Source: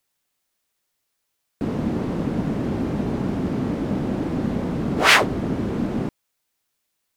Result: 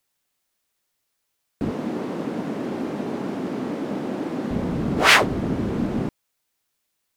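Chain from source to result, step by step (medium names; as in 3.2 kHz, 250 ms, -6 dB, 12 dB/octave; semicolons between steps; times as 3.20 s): 1.71–4.51 s: high-pass 260 Hz 12 dB/octave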